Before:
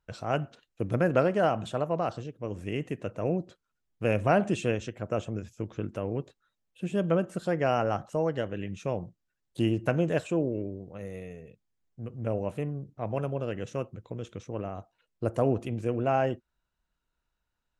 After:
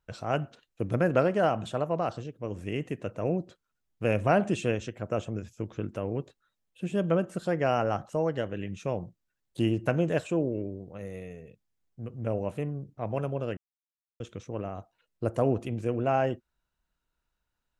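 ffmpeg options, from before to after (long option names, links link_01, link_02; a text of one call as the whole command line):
ffmpeg -i in.wav -filter_complex "[0:a]asplit=3[link_01][link_02][link_03];[link_01]atrim=end=13.57,asetpts=PTS-STARTPTS,afade=type=out:start_time=13.566:duration=0.004:curve=hsin[link_04];[link_02]atrim=start=13.57:end=14.2,asetpts=PTS-STARTPTS,volume=0[link_05];[link_03]atrim=start=14.2,asetpts=PTS-STARTPTS,afade=type=in:duration=0.004:curve=hsin[link_06];[link_04][link_05][link_06]concat=n=3:v=0:a=1" out.wav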